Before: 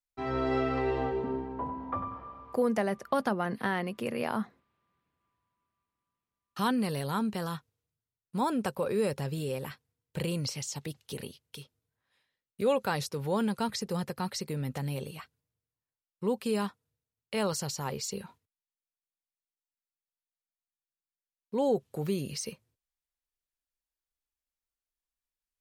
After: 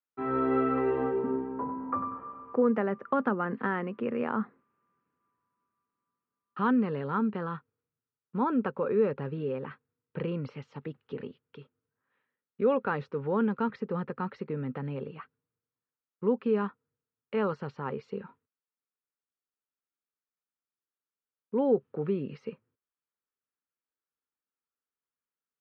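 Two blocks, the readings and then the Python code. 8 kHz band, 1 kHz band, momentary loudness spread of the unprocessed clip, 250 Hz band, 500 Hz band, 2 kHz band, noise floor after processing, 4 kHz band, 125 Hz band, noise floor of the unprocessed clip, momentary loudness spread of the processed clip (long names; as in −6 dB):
below −35 dB, +1.0 dB, 12 LU, +2.5 dB, +2.0 dB, −0.5 dB, below −85 dBFS, below −10 dB, −2.0 dB, below −85 dBFS, 14 LU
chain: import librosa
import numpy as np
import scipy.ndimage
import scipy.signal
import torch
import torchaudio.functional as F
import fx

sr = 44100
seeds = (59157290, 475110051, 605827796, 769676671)

y = fx.cabinet(x, sr, low_hz=140.0, low_slope=12, high_hz=2300.0, hz=(250.0, 440.0, 680.0, 1300.0, 2100.0), db=(5, 5, -7, 6, -4))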